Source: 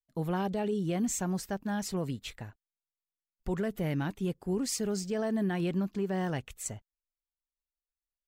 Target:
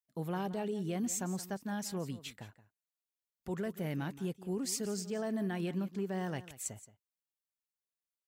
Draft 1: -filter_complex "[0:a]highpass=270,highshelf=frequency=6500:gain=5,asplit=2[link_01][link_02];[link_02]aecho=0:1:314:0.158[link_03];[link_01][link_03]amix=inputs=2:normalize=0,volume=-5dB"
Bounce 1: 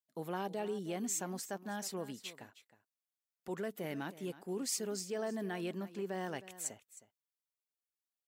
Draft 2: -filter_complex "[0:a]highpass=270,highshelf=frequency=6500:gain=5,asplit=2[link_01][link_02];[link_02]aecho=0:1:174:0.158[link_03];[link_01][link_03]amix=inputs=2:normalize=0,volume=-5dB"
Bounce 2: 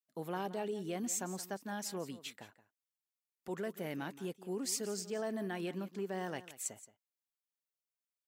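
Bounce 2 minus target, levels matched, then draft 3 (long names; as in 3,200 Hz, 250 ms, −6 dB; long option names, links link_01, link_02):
125 Hz band −5.5 dB
-filter_complex "[0:a]highpass=100,highshelf=frequency=6500:gain=5,asplit=2[link_01][link_02];[link_02]aecho=0:1:174:0.158[link_03];[link_01][link_03]amix=inputs=2:normalize=0,volume=-5dB"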